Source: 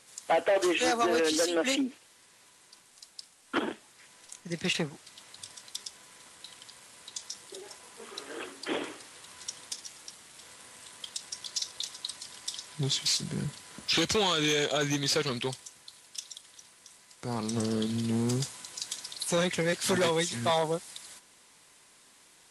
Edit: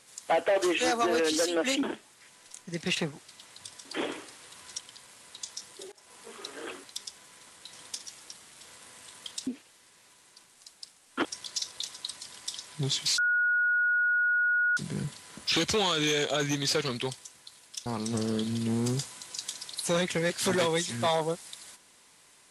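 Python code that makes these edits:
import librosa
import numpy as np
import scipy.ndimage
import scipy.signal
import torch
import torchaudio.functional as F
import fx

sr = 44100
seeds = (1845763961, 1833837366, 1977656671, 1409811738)

y = fx.edit(x, sr, fx.move(start_s=1.83, length_s=1.78, to_s=11.25),
    fx.swap(start_s=5.63, length_s=0.89, other_s=8.57, other_length_s=0.94),
    fx.fade_in_from(start_s=7.65, length_s=0.26, floor_db=-23.5),
    fx.insert_tone(at_s=13.18, length_s=1.59, hz=1450.0, db=-22.5),
    fx.cut(start_s=16.27, length_s=1.02), tone=tone)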